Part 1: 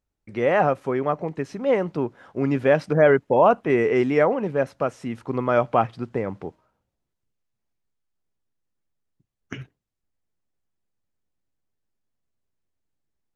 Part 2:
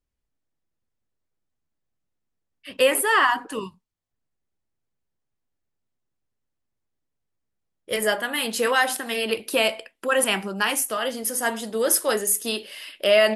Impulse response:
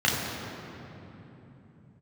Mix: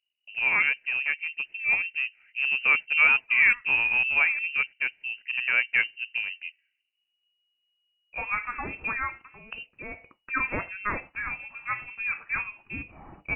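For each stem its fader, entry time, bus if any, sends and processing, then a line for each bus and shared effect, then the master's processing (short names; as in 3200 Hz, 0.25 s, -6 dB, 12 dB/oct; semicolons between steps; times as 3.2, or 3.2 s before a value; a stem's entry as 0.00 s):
-4.0 dB, 0.00 s, no send, Wiener smoothing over 25 samples
-5.0 dB, 0.25 s, no send, low shelf 390 Hz -6.5 dB; auto duck -18 dB, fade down 0.65 s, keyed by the first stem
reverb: off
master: inverted band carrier 2900 Hz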